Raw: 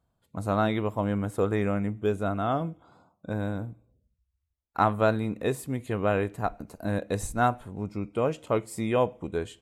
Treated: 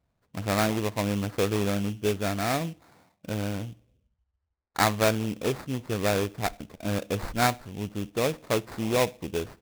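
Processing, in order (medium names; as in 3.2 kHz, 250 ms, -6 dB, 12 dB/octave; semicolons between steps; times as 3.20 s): sample-rate reducer 3 kHz, jitter 20%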